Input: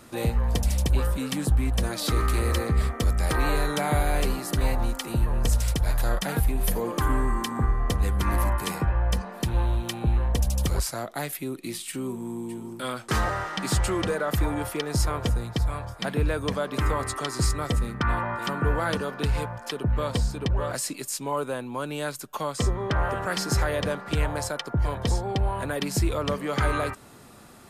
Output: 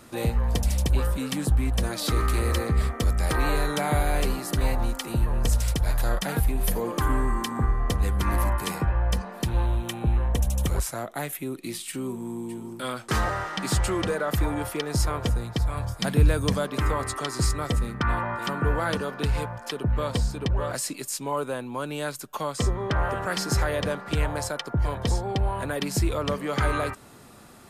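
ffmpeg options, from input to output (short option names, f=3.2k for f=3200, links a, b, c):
-filter_complex "[0:a]asettb=1/sr,asplit=3[a][b][c];[a]atrim=end=9.664[d];[b]atrim=start=9.66:end=11.51,asetpts=PTS-STARTPTS,afade=t=in:d=0.004:c=qsin,afade=t=out:st=1.846:d=0.004:c=qsin,equalizer=f=4.7k:t=o:w=0.4:g=-9[e];[c]atrim=start=11.506[f];[d][e]acrossfade=d=0.004:c1=hsin:c2=qsin[g];[g][f]acrossfade=d=0.004:c1=qsin:c2=hsin,asettb=1/sr,asplit=3[h][i][j];[h]atrim=end=15.774[k];[i]atrim=start=15.77:end=16.67,asetpts=PTS-STARTPTS,afade=t=in:d=0.004:c=qsin,afade=t=out:st=0.896:d=0.004:c=qsin,bass=f=250:g=7,treble=f=4k:g=8[l];[j]atrim=start=16.666[m];[k][l]acrossfade=d=0.004:c1=hsin:c2=qsin[n];[n][m]acrossfade=d=0.004:c1=qsin:c2=hsin"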